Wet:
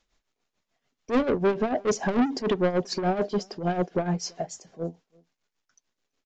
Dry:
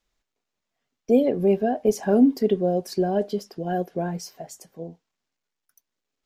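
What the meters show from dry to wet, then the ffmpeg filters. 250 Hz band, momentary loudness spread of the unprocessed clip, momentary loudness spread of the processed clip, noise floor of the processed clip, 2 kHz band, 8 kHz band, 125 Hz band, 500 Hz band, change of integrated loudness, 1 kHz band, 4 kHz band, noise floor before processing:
-4.5 dB, 21 LU, 12 LU, -84 dBFS, +5.5 dB, +2.0 dB, -0.5 dB, -3.5 dB, -4.0 dB, +0.5 dB, +4.5 dB, -84 dBFS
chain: -filter_complex "[0:a]aresample=16000,asoftclip=type=tanh:threshold=-25dB,aresample=44100,tremolo=f=6.8:d=0.74,asplit=2[a][b];[b]adelay=332.4,volume=-28dB,highshelf=f=4k:g=-7.48[c];[a][c]amix=inputs=2:normalize=0,volume=7.5dB"

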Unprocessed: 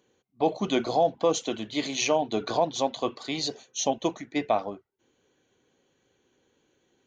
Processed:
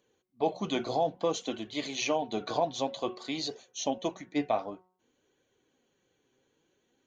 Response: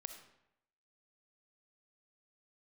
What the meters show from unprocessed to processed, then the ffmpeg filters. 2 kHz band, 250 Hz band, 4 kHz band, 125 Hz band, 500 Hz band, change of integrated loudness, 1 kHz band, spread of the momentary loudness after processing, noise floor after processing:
-4.5 dB, -4.0 dB, -4.5 dB, -4.5 dB, -5.0 dB, -5.0 dB, -4.5 dB, 6 LU, -76 dBFS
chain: -filter_complex "[0:a]acrossover=split=6400[a][b];[b]acompressor=threshold=-44dB:ratio=4:attack=1:release=60[c];[a][c]amix=inputs=2:normalize=0,flanger=delay=1.6:depth=6.2:regen=59:speed=0.55:shape=triangular,bandreject=f=183.5:t=h:w=4,bandreject=f=367:t=h:w=4,bandreject=f=550.5:t=h:w=4,bandreject=f=734:t=h:w=4,bandreject=f=917.5:t=h:w=4,bandreject=f=1.101k:t=h:w=4,bandreject=f=1.2845k:t=h:w=4,bandreject=f=1.468k:t=h:w=4,bandreject=f=1.6515k:t=h:w=4"

